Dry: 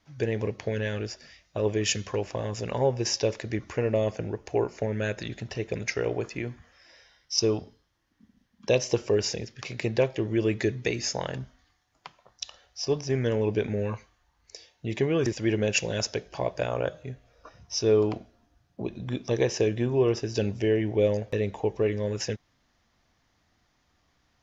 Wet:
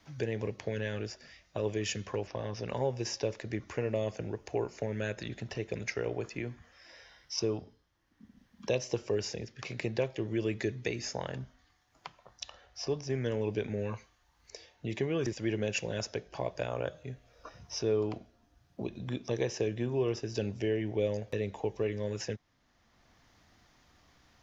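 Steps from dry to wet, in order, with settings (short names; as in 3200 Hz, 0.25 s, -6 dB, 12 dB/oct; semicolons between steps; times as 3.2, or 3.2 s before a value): 2.27–2.69 Chebyshev low-pass 6200 Hz, order 8; three-band squash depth 40%; gain -6.5 dB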